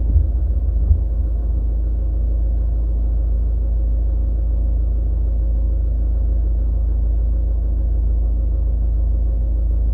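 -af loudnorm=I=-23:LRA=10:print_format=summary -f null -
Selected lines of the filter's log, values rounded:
Input Integrated:    -20.8 LUFS
Input True Peak:      -3.2 dBTP
Input LRA:             0.6 LU
Input Threshold:     -30.8 LUFS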